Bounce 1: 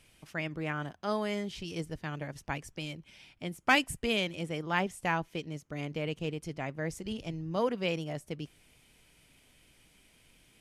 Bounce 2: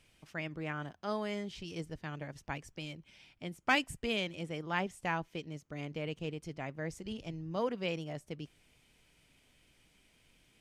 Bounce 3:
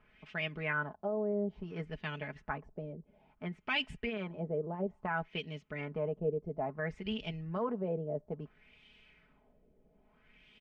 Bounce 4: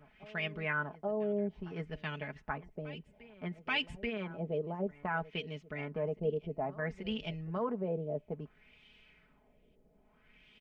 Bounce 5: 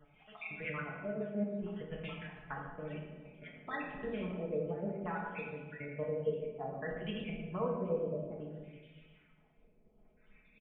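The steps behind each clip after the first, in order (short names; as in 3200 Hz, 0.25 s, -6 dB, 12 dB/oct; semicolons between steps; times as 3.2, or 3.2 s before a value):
bell 11000 Hz -6.5 dB 0.53 oct; gain -4 dB
comb 4.7 ms, depth 68%; limiter -27.5 dBFS, peak gain reduction 12 dB; LFO low-pass sine 0.59 Hz 500–3100 Hz
reverse echo 0.833 s -19 dB
random spectral dropouts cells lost 46%; reverb RT60 1.4 s, pre-delay 4 ms, DRR -3 dB; downsampling 8000 Hz; gain -5 dB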